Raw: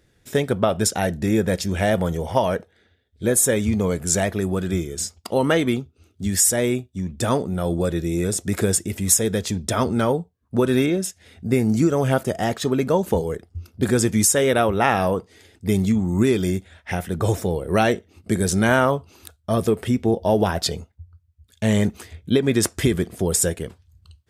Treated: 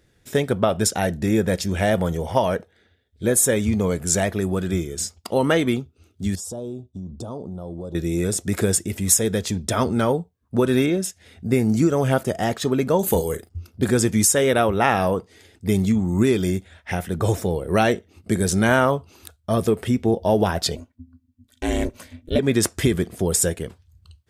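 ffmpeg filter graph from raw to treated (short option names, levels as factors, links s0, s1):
-filter_complex "[0:a]asettb=1/sr,asplit=3[s0][s1][s2];[s0]atrim=end=6.354[s3];[s1]atrim=start=6.35:end=7.95,asetpts=PTS-STARTPTS,afade=t=in:d=0.004:c=qsin,afade=t=out:st=1.596:d=0.004:c=qsin,aemphasis=mode=reproduction:type=75fm,acompressor=threshold=0.0316:ratio=4:attack=3.2:release=140:knee=1:detection=peak,asuperstop=centerf=2000:order=4:qfactor=0.72[s4];[s2]atrim=start=7.946[s5];[s3][s4]acrossfade=d=0.004:c1=hsin:c2=qsin[s6];[s6][s5]acrossfade=d=0.004:c1=qsin:c2=hsin,asettb=1/sr,asplit=3[s7][s8][s9];[s7]atrim=end=12.994[s10];[s8]atrim=start=12.99:end=13.49,asetpts=PTS-STARTPTS,afade=t=in:d=0.004:c=qsin,afade=t=out:st=0.496:d=0.004:c=qsin,aemphasis=mode=production:type=75kf,bandreject=f=5500:w=7,asplit=2[s11][s12];[s12]adelay=39,volume=0.251[s13];[s11][s13]amix=inputs=2:normalize=0,atrim=end_sample=22050[s14];[s9]atrim=start=13.486[s15];[s10][s14]acrossfade=d=0.004:c1=hsin:c2=qsin[s16];[s16][s15]acrossfade=d=0.004:c1=qsin:c2=hsin,asettb=1/sr,asplit=3[s17][s18][s19];[s17]atrim=end=20.754[s20];[s18]atrim=start=20.75:end=22.39,asetpts=PTS-STARTPTS,afade=t=in:d=0.004:c=qsin,afade=t=out:st=1.636:d=0.004:c=qsin,aecho=1:1:2.4:0.38,atrim=end_sample=72324,aeval=exprs='val(0)*sin(2*PI*170*n/s)':c=same[s21];[s19]atrim=start=22.386[s22];[s20][s21]acrossfade=d=0.004:c1=hsin:c2=qsin[s23];[s23][s22]acrossfade=d=0.004:c1=qsin:c2=hsin"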